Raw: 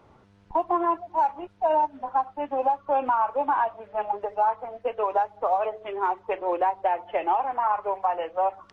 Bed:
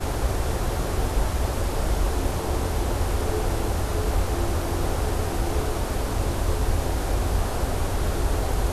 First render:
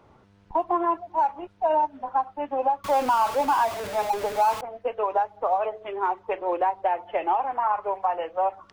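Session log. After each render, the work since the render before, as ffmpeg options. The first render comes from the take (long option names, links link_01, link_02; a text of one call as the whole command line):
ffmpeg -i in.wav -filter_complex "[0:a]asettb=1/sr,asplit=3[link_01][link_02][link_03];[link_01]atrim=end=2.844[link_04];[link_02]atrim=start=2.84:end=4.61,asetpts=PTS-STARTPTS,afade=type=in:duration=0.004:curve=qsin,afade=type=out:start_time=1.766:duration=0.004:curve=qsin,aeval=exprs='val(0)+0.5*0.0376*sgn(val(0))':channel_layout=same[link_05];[link_03]atrim=start=4.606[link_06];[link_04][link_05]acrossfade=duration=0.004:curve1=hsin:curve2=qsin[link_07];[link_07][link_06]acrossfade=duration=0.004:curve1=qsin:curve2=hsin" out.wav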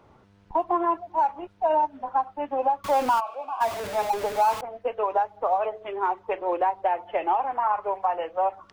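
ffmpeg -i in.wav -filter_complex "[0:a]asplit=3[link_01][link_02][link_03];[link_01]afade=type=out:start_time=3.19:duration=0.02[link_04];[link_02]asplit=3[link_05][link_06][link_07];[link_05]bandpass=frequency=730:width_type=q:width=8,volume=0dB[link_08];[link_06]bandpass=frequency=1090:width_type=q:width=8,volume=-6dB[link_09];[link_07]bandpass=frequency=2440:width_type=q:width=8,volume=-9dB[link_10];[link_08][link_09][link_10]amix=inputs=3:normalize=0,afade=type=in:start_time=3.19:duration=0.02,afade=type=out:start_time=3.6:duration=0.02[link_11];[link_03]afade=type=in:start_time=3.6:duration=0.02[link_12];[link_04][link_11][link_12]amix=inputs=3:normalize=0" out.wav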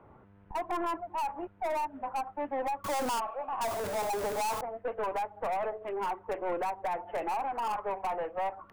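ffmpeg -i in.wav -filter_complex "[0:a]aeval=exprs='(tanh(28.2*val(0)+0.2)-tanh(0.2))/28.2':channel_layout=same,acrossover=split=380|2400[link_01][link_02][link_03];[link_03]acrusher=bits=5:mix=0:aa=0.5[link_04];[link_01][link_02][link_04]amix=inputs=3:normalize=0" out.wav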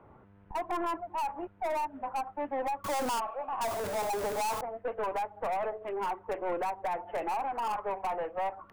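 ffmpeg -i in.wav -af anull out.wav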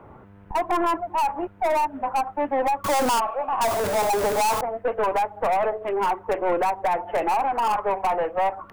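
ffmpeg -i in.wav -af "volume=10dB" out.wav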